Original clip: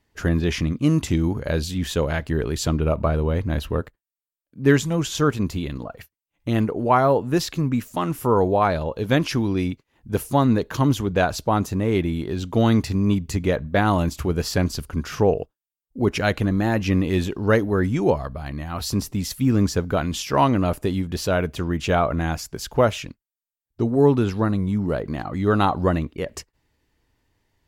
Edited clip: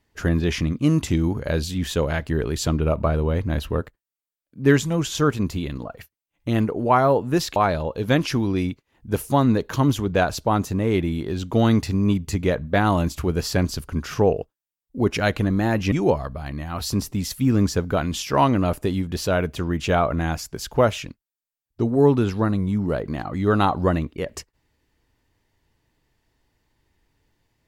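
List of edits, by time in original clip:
7.56–8.57 s: delete
16.93–17.92 s: delete

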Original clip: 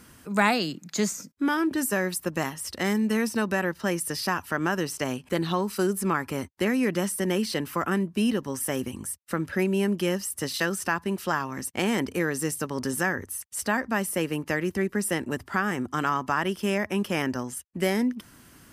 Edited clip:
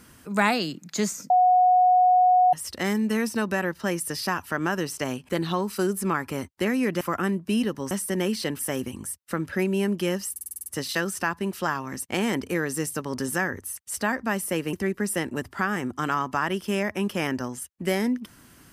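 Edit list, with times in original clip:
1.30–2.53 s: bleep 731 Hz -14.5 dBFS
7.01–7.69 s: move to 8.59 s
10.31 s: stutter 0.05 s, 8 plays
14.38–14.68 s: delete

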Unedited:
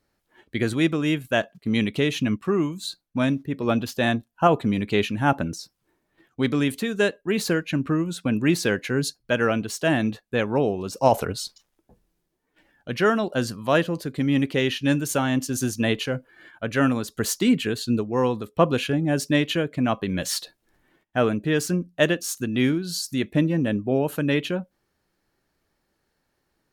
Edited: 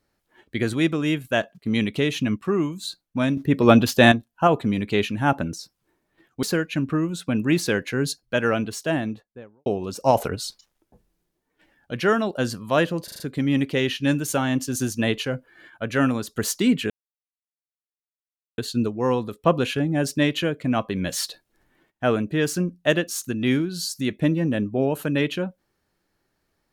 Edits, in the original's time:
3.37–4.12 s: gain +8.5 dB
6.43–7.40 s: delete
9.59–10.63 s: studio fade out
14.01 s: stutter 0.04 s, 5 plays
17.71 s: insert silence 1.68 s

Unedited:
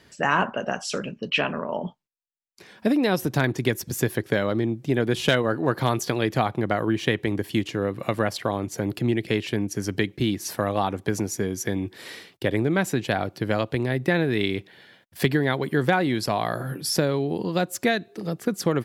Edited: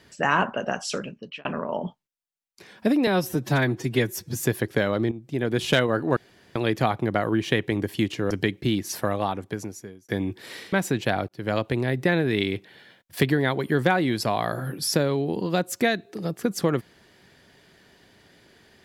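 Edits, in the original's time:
0.90–1.45 s: fade out
3.07–3.96 s: stretch 1.5×
4.67–5.18 s: fade in, from -13 dB
5.72–6.11 s: room tone
7.86–9.86 s: delete
10.57–11.64 s: fade out
12.28–12.75 s: delete
13.31–13.58 s: fade in

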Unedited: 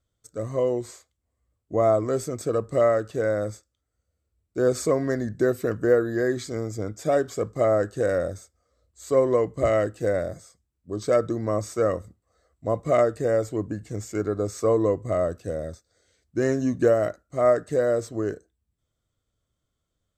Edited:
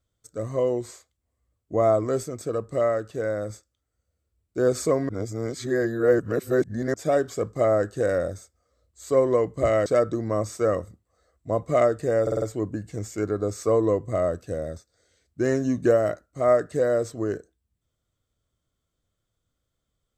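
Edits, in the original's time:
2.23–3.50 s: gain -3 dB
5.09–6.94 s: reverse
9.86–11.03 s: delete
13.39 s: stutter 0.05 s, 5 plays

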